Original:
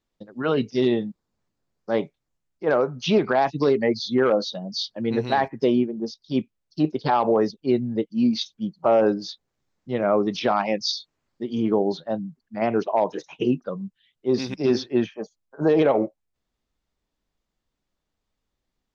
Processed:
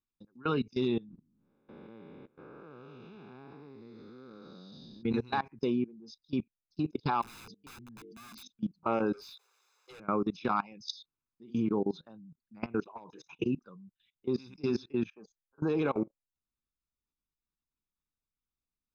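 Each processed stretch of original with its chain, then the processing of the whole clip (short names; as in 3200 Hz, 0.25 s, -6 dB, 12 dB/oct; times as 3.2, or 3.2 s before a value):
1.09–5.03 time blur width 0.428 s + LPF 3600 Hz
7.22–8.5 low shelf 81 Hz -6.5 dB + notches 50/100/150/200/250/300/350/400/450 Hz + wrapped overs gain 22.5 dB
9.13–10 steep high-pass 390 Hz 96 dB/oct + high shelf 6000 Hz +6.5 dB + overdrive pedal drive 32 dB, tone 5200 Hz, clips at -18 dBFS
whole clip: comb 0.8 ms, depth 72%; level quantiser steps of 22 dB; gain -6.5 dB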